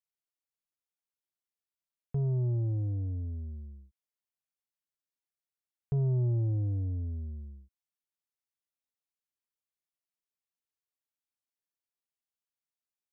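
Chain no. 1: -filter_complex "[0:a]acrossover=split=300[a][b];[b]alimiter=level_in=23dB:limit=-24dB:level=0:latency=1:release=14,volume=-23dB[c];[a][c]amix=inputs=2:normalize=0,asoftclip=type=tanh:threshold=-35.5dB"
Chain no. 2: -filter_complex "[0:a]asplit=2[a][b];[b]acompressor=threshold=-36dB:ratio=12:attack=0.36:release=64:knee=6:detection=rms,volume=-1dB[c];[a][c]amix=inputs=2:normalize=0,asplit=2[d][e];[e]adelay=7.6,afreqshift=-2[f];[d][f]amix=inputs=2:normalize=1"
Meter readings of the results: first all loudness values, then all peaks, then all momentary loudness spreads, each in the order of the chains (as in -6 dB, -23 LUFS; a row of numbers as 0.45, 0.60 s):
-39.5, -32.5 LUFS; -35.5, -22.0 dBFS; 10, 14 LU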